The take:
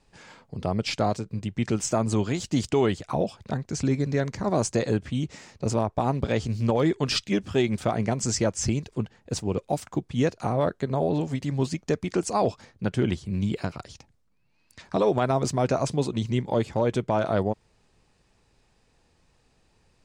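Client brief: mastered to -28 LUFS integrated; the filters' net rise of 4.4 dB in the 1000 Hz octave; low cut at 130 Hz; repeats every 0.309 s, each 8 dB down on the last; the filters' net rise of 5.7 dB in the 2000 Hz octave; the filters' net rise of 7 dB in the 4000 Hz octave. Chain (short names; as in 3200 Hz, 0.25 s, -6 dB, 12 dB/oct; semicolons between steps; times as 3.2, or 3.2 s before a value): HPF 130 Hz; bell 1000 Hz +5 dB; bell 2000 Hz +3.5 dB; bell 4000 Hz +8 dB; feedback echo 0.309 s, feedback 40%, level -8 dB; gain -3.5 dB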